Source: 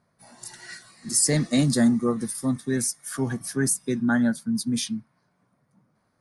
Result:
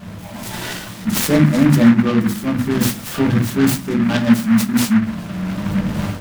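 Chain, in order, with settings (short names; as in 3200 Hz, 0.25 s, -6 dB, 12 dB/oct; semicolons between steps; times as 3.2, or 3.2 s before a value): zero-crossing step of -35 dBFS; 4.03–4.93 high shelf 3800 Hz +10 dB; reverb RT60 0.40 s, pre-delay 5 ms, DRR -3.5 dB; AGC gain up to 13 dB; low shelf 230 Hz +10 dB; noise-modulated delay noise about 1400 Hz, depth 0.094 ms; gain -5.5 dB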